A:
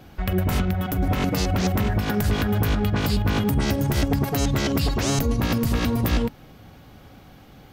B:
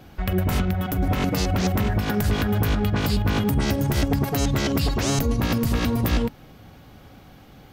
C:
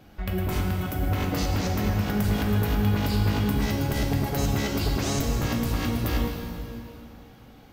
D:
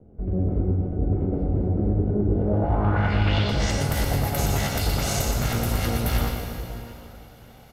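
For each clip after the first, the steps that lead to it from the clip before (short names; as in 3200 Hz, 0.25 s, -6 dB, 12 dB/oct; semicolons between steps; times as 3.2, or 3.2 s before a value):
nothing audible
plate-style reverb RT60 2.6 s, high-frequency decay 0.9×, DRR 0.5 dB; gain -6 dB
minimum comb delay 1.4 ms; low-pass sweep 360 Hz -> 12000 Hz, 2.34–3.93; echo 0.12 s -6 dB; gain +2 dB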